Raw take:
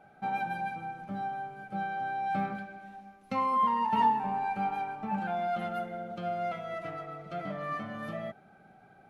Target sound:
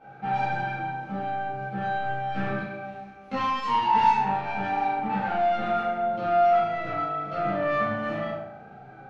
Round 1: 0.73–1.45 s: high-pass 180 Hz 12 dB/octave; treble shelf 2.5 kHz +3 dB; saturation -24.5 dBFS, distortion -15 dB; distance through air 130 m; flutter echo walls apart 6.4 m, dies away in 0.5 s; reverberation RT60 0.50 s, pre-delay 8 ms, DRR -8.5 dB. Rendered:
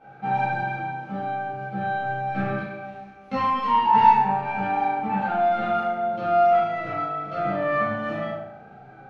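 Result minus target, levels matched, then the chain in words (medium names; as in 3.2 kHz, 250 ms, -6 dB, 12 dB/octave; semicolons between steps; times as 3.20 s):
saturation: distortion -6 dB
0.73–1.45 s: high-pass 180 Hz 12 dB/octave; treble shelf 2.5 kHz +3 dB; saturation -31.5 dBFS, distortion -8 dB; distance through air 130 m; flutter echo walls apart 6.4 m, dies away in 0.5 s; reverberation RT60 0.50 s, pre-delay 8 ms, DRR -8.5 dB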